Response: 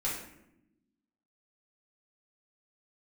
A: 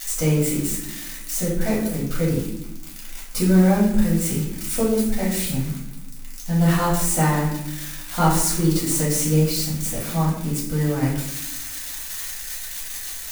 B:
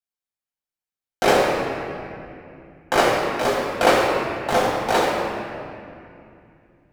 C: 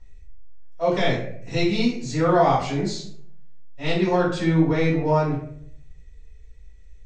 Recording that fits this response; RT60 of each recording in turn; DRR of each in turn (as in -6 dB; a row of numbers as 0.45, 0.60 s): A; 0.85, 2.5, 0.65 s; -6.5, -5.0, -9.5 dB